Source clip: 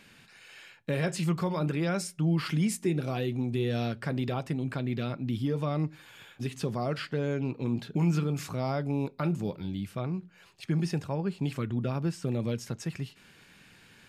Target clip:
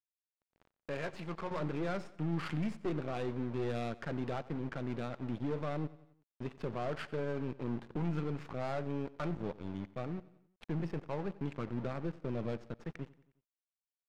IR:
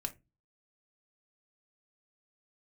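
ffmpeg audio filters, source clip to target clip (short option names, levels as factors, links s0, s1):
-af "asetnsamples=n=441:p=0,asendcmd='1.51 highpass f 280',highpass=f=680:p=1,aeval=exprs='(tanh(35.5*val(0)+0.5)-tanh(0.5))/35.5':c=same,aeval=exprs='val(0)*gte(abs(val(0)),0.00708)':c=same,adynamicsmooth=sensitivity=6:basefreq=1200,aecho=1:1:90|180|270|360:0.106|0.0561|0.0298|0.0158,volume=1.12"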